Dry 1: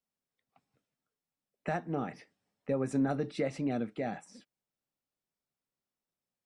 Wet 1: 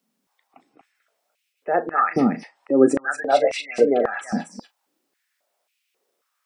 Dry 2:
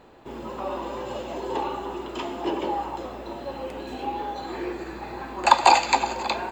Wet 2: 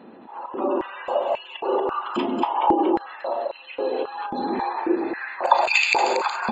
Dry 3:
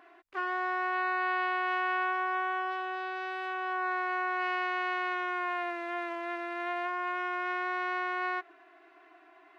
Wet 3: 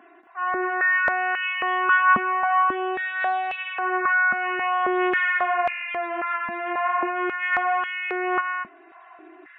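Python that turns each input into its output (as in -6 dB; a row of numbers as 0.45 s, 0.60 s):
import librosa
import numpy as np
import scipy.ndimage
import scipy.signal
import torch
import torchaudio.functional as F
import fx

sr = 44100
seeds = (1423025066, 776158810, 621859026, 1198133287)

p1 = fx.spec_gate(x, sr, threshold_db=-25, keep='strong')
p2 = fx.auto_swell(p1, sr, attack_ms=154.0)
p3 = fx.doubler(p2, sr, ms=36.0, db=-13)
p4 = p3 + fx.echo_single(p3, sr, ms=233, db=-4.0, dry=0)
p5 = fx.filter_held_highpass(p4, sr, hz=3.7, low_hz=220.0, high_hz=2500.0)
y = p5 * 10.0 ** (-24 / 20.0) / np.sqrt(np.mean(np.square(p5)))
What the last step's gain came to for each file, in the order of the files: +14.5 dB, +2.5 dB, +4.0 dB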